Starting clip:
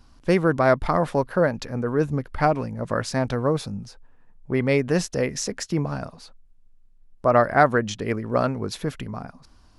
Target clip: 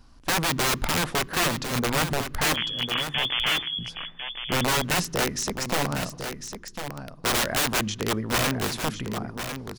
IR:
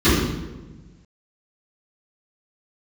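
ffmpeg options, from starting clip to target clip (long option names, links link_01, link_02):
-filter_complex "[0:a]aeval=exprs='(mod(7.94*val(0)+1,2)-1)/7.94':channel_layout=same,asettb=1/sr,asplit=3[link_01][link_02][link_03];[link_01]atrim=end=2.544[link_04];[link_02]atrim=start=2.54:end=3.79,asetpts=PTS-STARTPTS,afade=type=in:duration=0.004:curve=qsin,afade=type=out:start_time=1.246:duration=0.004:curve=qsin,lowpass=frequency=3000:width_type=q:width=0.5098,lowpass=frequency=3000:width_type=q:width=0.6013,lowpass=frequency=3000:width_type=q:width=0.9,lowpass=frequency=3000:width_type=q:width=2.563,afreqshift=-3500[link_05];[link_03]atrim=start=3.786[link_06];[link_04][link_05]acrossfade=duration=0.004:curve1=hsin:curve2=qsin[link_07];[link_07][link_06]acrossfade=duration=0.004:curve1=qsin:curve2=hsin,aecho=1:1:1051:0.376,asplit=2[link_08][link_09];[1:a]atrim=start_sample=2205[link_10];[link_09][link_10]afir=irnorm=-1:irlink=0,volume=-47.5dB[link_11];[link_08][link_11]amix=inputs=2:normalize=0"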